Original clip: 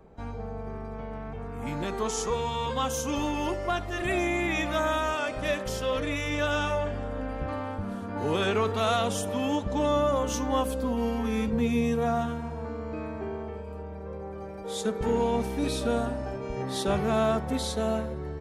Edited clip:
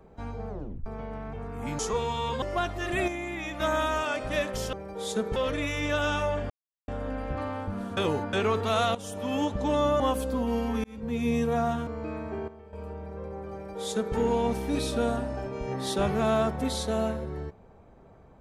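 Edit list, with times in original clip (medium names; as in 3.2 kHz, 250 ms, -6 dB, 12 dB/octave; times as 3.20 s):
0.49 s: tape stop 0.37 s
1.79–2.16 s: delete
2.79–3.54 s: delete
4.20–4.72 s: gain -7 dB
6.99 s: insert silence 0.38 s
8.08–8.44 s: reverse
9.06–9.49 s: fade in, from -15 dB
10.11–10.50 s: delete
11.34–11.84 s: fade in
12.37–12.76 s: delete
13.37–13.62 s: gain -11.5 dB
14.42–15.05 s: copy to 5.85 s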